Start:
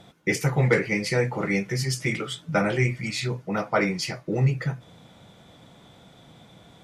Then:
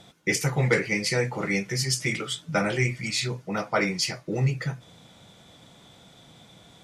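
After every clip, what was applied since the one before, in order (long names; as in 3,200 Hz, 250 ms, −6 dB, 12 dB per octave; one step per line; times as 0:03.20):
parametric band 6,900 Hz +7.5 dB 2.5 octaves
level −2.5 dB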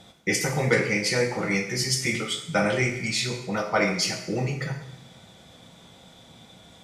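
convolution reverb, pre-delay 3 ms, DRR 3 dB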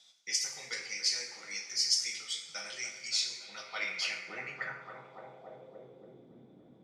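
delay with a low-pass on its return 285 ms, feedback 70%, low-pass 2,000 Hz, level −11 dB
band-pass filter sweep 5,300 Hz → 300 Hz, 0:03.38–0:06.33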